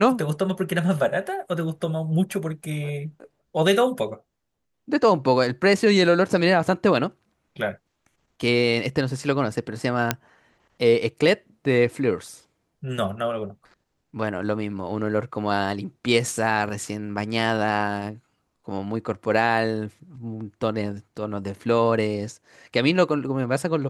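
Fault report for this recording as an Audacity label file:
10.110000	10.110000	pop -4 dBFS

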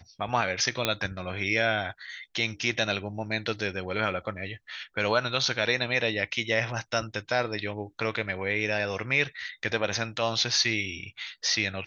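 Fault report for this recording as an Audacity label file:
0.850000	0.850000	pop -8 dBFS

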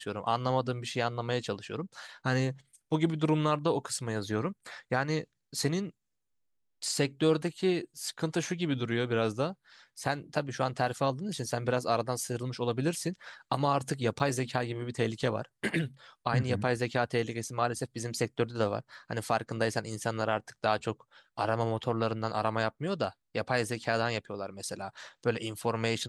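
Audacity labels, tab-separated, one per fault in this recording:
14.190000	14.200000	dropout 8.9 ms

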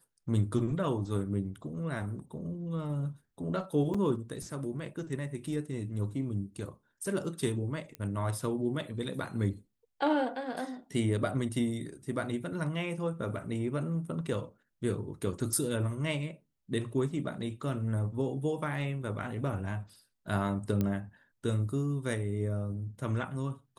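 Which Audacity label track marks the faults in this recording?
3.940000	3.950000	dropout 5.3 ms
7.950000	7.950000	pop -25 dBFS
20.810000	20.810000	pop -18 dBFS

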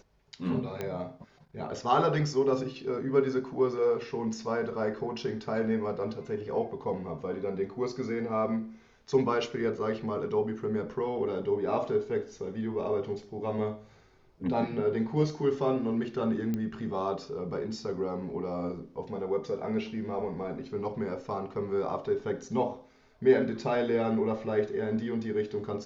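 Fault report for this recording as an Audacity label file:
0.810000	0.810000	pop -20 dBFS
16.540000	16.540000	pop -20 dBFS

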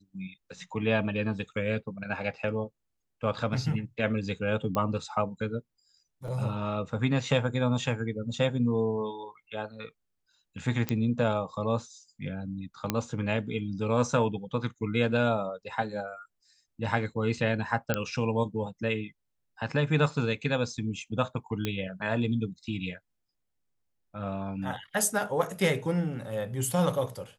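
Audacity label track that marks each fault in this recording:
4.750000	4.750000	pop -17 dBFS
6.280000	6.280000	dropout 2.9 ms
10.890000	10.890000	pop -13 dBFS
12.900000	12.900000	pop -11 dBFS
17.940000	17.940000	pop -11 dBFS
21.650000	21.650000	pop -15 dBFS

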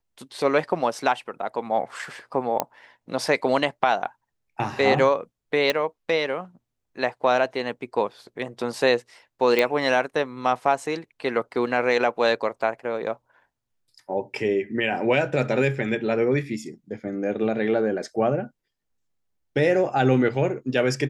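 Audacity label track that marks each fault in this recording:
2.600000	2.600000	pop -8 dBFS
5.700000	5.700000	pop -8 dBFS
9.590000	9.590000	pop -8 dBFS

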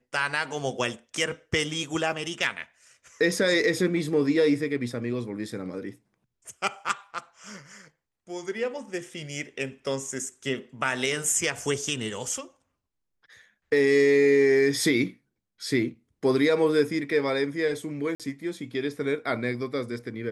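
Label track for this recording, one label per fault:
6.890000	6.890000	dropout 2.2 ms
18.150000	18.200000	dropout 47 ms

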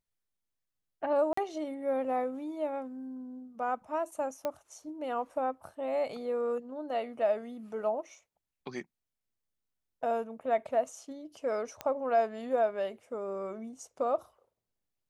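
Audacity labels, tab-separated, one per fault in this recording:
1.330000	1.370000	dropout 44 ms
4.450000	4.450000	pop -20 dBFS
11.810000	11.810000	pop -21 dBFS

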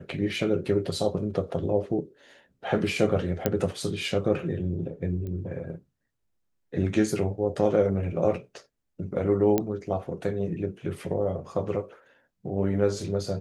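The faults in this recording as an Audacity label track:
3.460000	3.460000	pop -9 dBFS
5.270000	5.270000	pop -26 dBFS
9.580000	9.580000	pop -11 dBFS

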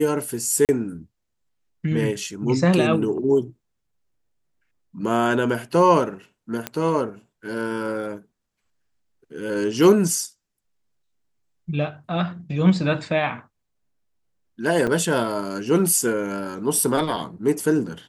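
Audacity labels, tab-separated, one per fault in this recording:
0.650000	0.690000	dropout 38 ms
6.670000	6.670000	pop -10 dBFS
14.870000	14.880000	dropout 5.3 ms

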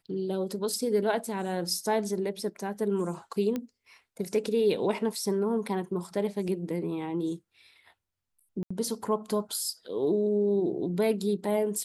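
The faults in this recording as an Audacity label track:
3.560000	3.560000	pop -19 dBFS
8.630000	8.710000	dropout 75 ms

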